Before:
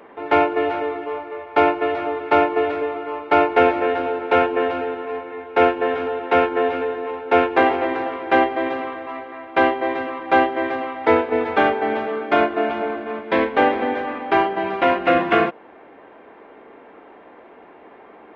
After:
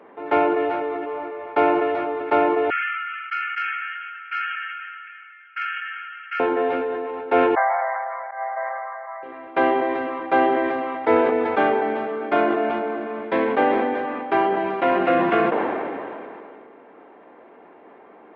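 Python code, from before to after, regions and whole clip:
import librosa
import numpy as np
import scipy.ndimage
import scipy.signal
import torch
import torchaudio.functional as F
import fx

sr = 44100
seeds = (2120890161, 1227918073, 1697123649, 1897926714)

y = fx.chain(x, sr, fx.brickwall_bandpass(low_hz=1200.0, high_hz=3300.0),
    fx.transformer_sat(knee_hz=950.0), at=(2.7, 6.4))
y = fx.chain(y, sr, fx.brickwall_bandpass(low_hz=540.0, high_hz=2300.0),
    fx.auto_swell(attack_ms=229.0), at=(7.55, 9.23))
y = scipy.signal.sosfilt(scipy.signal.butter(2, 130.0, 'highpass', fs=sr, output='sos'), y)
y = fx.high_shelf(y, sr, hz=3100.0, db=-10.0)
y = fx.sustainer(y, sr, db_per_s=22.0)
y = y * 10.0 ** (-2.5 / 20.0)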